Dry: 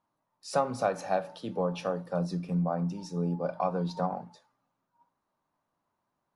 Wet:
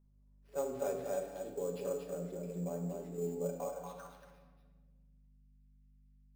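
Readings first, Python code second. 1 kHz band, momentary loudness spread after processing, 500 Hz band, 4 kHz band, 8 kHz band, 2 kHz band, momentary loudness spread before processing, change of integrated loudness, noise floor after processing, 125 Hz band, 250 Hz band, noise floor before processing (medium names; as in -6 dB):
-15.5 dB, 9 LU, -5.5 dB, under -10 dB, -2.5 dB, -14.0 dB, 5 LU, -8.0 dB, -64 dBFS, -12.0 dB, -11.0 dB, -82 dBFS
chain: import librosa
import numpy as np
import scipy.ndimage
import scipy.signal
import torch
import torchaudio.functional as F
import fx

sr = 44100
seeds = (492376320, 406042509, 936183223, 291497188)

p1 = scipy.ndimage.median_filter(x, 9, mode='constant')
p2 = fx.env_lowpass(p1, sr, base_hz=2000.0, full_db=-25.0)
p3 = fx.tone_stack(p2, sr, knobs='10-0-1')
p4 = p3 + 0.52 * np.pad(p3, (int(7.1 * sr / 1000.0), 0))[:len(p3)]
p5 = fx.transient(p4, sr, attack_db=-7, sustain_db=-1)
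p6 = p5 + fx.echo_single(p5, sr, ms=235, db=-4.5, dry=0)
p7 = fx.filter_sweep_highpass(p6, sr, from_hz=420.0, to_hz=2500.0, start_s=3.49, end_s=4.37, q=2.7)
p8 = fx.sample_hold(p7, sr, seeds[0], rate_hz=7500.0, jitter_pct=0)
p9 = fx.add_hum(p8, sr, base_hz=50, snr_db=25)
p10 = fx.room_shoebox(p9, sr, seeds[1], volume_m3=1300.0, walls='mixed', distance_m=1.2)
y = F.gain(torch.from_numpy(p10), 12.0).numpy()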